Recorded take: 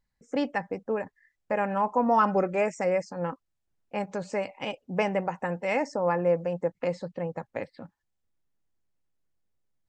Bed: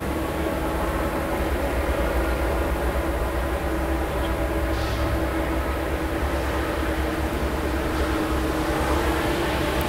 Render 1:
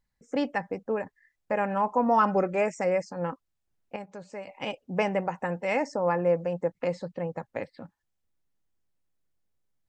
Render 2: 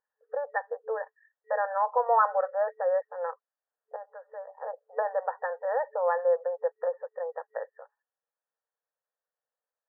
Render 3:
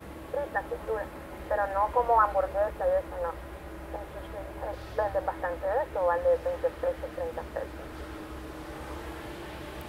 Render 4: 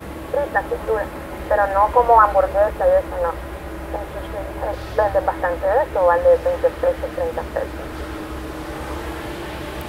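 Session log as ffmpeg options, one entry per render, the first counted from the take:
ffmpeg -i in.wav -filter_complex "[0:a]asplit=3[link_01][link_02][link_03];[link_01]atrim=end=3.962[link_04];[link_02]atrim=start=3.958:end=4.472,asetpts=PTS-STARTPTS,volume=-9.5dB[link_05];[link_03]atrim=start=4.468[link_06];[link_04][link_05]acrossfade=duration=0.004:curve1=hsin:curve2=hsin[link_07];[link_07][link_06]acrossfade=duration=0.004:curve1=hsin:curve2=hsin" out.wav
ffmpeg -i in.wav -af "afftfilt=real='re*between(b*sr/4096,440,1900)':imag='im*between(b*sr/4096,440,1900)':win_size=4096:overlap=0.75" out.wav
ffmpeg -i in.wav -i bed.wav -filter_complex "[1:a]volume=-17dB[link_01];[0:a][link_01]amix=inputs=2:normalize=0" out.wav
ffmpeg -i in.wav -af "volume=11dB,alimiter=limit=-2dB:level=0:latency=1" out.wav

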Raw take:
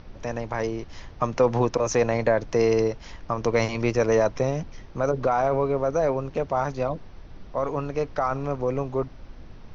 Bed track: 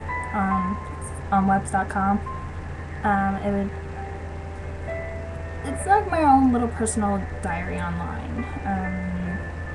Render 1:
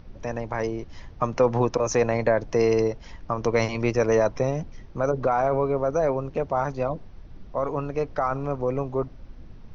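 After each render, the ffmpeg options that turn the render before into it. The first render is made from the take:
ffmpeg -i in.wav -af "afftdn=noise_reduction=6:noise_floor=-44" out.wav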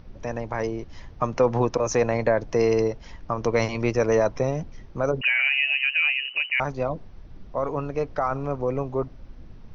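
ffmpeg -i in.wav -filter_complex "[0:a]asettb=1/sr,asplit=3[link_01][link_02][link_03];[link_01]atrim=end=5.214[link_04];[link_02]atrim=start=5.21:end=6.6,asetpts=PTS-STARTPTS,afade=type=in:duration=0.004:curve=qsin,afade=type=out:start_time=1.386:duration=0.004:curve=qsin,lowpass=frequency=2600:width_type=q:width=0.5098,lowpass=frequency=2600:width_type=q:width=0.6013,lowpass=frequency=2600:width_type=q:width=0.9,lowpass=frequency=2600:width_type=q:width=2.563,afreqshift=-3000[link_05];[link_03]atrim=start=6.596[link_06];[link_04][link_05]acrossfade=duration=0.004:curve1=hsin:curve2=qsin[link_07];[link_07][link_06]acrossfade=duration=0.004:curve1=qsin:curve2=hsin" out.wav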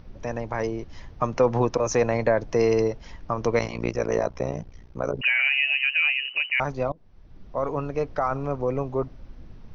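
ffmpeg -i in.wav -filter_complex "[0:a]asplit=3[link_01][link_02][link_03];[link_01]afade=type=out:start_time=3.58:duration=0.02[link_04];[link_02]tremolo=f=60:d=0.947,afade=type=in:start_time=3.58:duration=0.02,afade=type=out:start_time=5.18:duration=0.02[link_05];[link_03]afade=type=in:start_time=5.18:duration=0.02[link_06];[link_04][link_05][link_06]amix=inputs=3:normalize=0,asplit=2[link_07][link_08];[link_07]atrim=end=6.92,asetpts=PTS-STARTPTS,afade=type=out:start_time=6.916:duration=0.004:curve=hsin:silence=0.0668344[link_09];[link_08]atrim=start=6.92,asetpts=PTS-STARTPTS,afade=type=in:duration=0.71:silence=0.0668344[link_10];[link_09][link_10]concat=n=2:v=0:a=1" out.wav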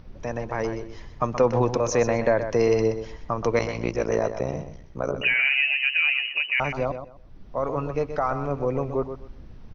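ffmpeg -i in.wav -af "aecho=1:1:126|252|378:0.335|0.0703|0.0148" out.wav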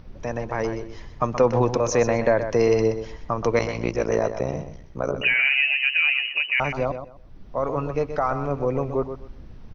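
ffmpeg -i in.wav -af "volume=1.5dB" out.wav

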